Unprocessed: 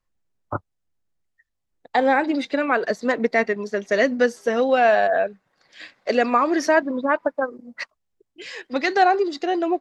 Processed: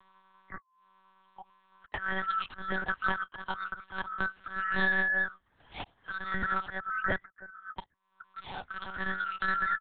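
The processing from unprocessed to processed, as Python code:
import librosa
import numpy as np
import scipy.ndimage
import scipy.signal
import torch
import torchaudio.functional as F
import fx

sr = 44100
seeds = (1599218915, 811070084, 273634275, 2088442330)

y = fx.band_swap(x, sr, width_hz=1000)
y = fx.comb(y, sr, ms=2.2, depth=0.66, at=(2.73, 5.03))
y = fx.auto_swell(y, sr, attack_ms=508.0)
y = fx.lpc_monotone(y, sr, seeds[0], pitch_hz=190.0, order=8)
y = fx.band_squash(y, sr, depth_pct=70)
y = F.gain(torch.from_numpy(y), -6.0).numpy()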